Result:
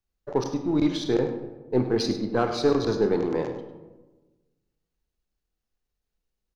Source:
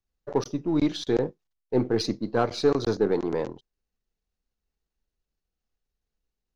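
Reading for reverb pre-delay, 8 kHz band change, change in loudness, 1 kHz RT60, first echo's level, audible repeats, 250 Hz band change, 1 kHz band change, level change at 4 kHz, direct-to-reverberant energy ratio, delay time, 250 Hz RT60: 22 ms, no reading, +1.0 dB, 1.1 s, -11.5 dB, 1, +1.5 dB, +1.0 dB, +1.0 dB, 5.5 dB, 102 ms, 1.4 s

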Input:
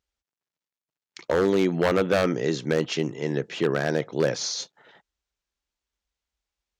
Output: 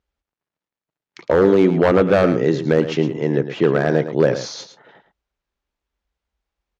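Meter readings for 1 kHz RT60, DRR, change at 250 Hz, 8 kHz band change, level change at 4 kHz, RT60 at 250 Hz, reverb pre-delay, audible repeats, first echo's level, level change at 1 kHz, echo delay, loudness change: no reverb, no reverb, +8.0 dB, no reading, -1.0 dB, no reverb, no reverb, 1, -11.0 dB, +6.5 dB, 110 ms, +7.5 dB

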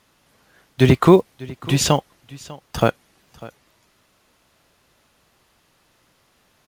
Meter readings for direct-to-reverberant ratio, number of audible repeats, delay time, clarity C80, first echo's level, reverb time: no reverb, 1, 597 ms, no reverb, -20.0 dB, no reverb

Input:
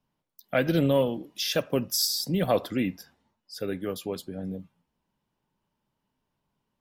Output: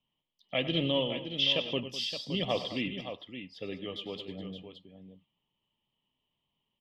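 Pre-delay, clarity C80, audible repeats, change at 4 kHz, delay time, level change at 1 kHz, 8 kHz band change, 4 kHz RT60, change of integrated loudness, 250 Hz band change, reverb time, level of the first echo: no reverb, no reverb, 3, +1.5 dB, 97 ms, -7.0 dB, -19.5 dB, no reverb, -4.5 dB, -7.0 dB, no reverb, -14.0 dB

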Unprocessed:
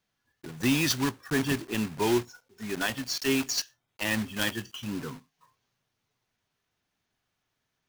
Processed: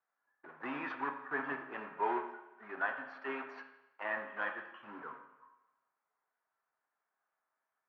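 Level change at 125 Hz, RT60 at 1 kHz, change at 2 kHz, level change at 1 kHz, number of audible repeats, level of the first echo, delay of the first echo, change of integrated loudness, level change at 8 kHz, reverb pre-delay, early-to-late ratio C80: under -25 dB, 0.95 s, -6.0 dB, -0.5 dB, no echo, no echo, no echo, -11.0 dB, under -40 dB, 7 ms, 10.0 dB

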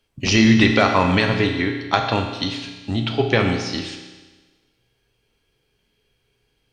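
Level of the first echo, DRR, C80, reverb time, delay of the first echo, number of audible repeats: no echo, 3.0 dB, 7.5 dB, 1.3 s, no echo, no echo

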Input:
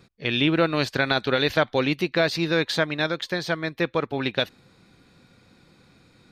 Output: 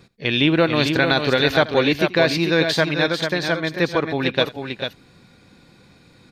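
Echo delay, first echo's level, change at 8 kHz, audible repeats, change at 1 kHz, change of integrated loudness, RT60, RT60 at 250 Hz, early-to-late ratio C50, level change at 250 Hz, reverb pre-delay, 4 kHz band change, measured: 82 ms, -20.0 dB, +5.0 dB, 2, +4.0 dB, +4.5 dB, no reverb, no reverb, no reverb, +5.0 dB, no reverb, +5.0 dB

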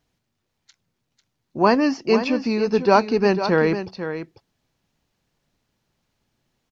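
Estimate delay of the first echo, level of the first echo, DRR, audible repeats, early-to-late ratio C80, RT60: 496 ms, -10.0 dB, no reverb, 1, no reverb, no reverb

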